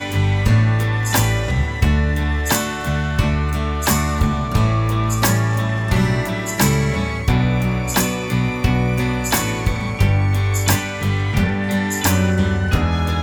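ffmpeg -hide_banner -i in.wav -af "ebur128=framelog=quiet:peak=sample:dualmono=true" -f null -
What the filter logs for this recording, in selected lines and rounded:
Integrated loudness:
  I:         -15.5 LUFS
  Threshold: -25.5 LUFS
Loudness range:
  LRA:         0.9 LU
  Threshold: -35.6 LUFS
  LRA low:   -16.1 LUFS
  LRA high:  -15.1 LUFS
Sample peak:
  Peak:       -3.3 dBFS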